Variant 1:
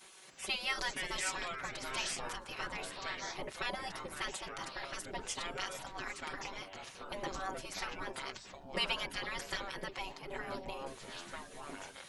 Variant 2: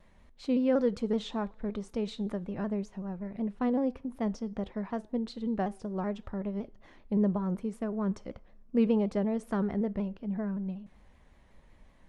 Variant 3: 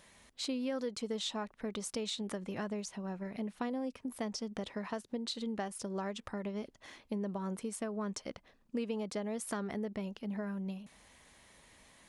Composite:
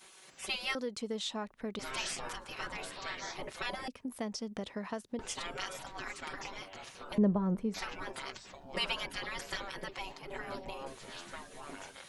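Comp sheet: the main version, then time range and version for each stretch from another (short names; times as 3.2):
1
0.75–1.79 from 3
3.88–5.19 from 3
7.18–7.74 from 2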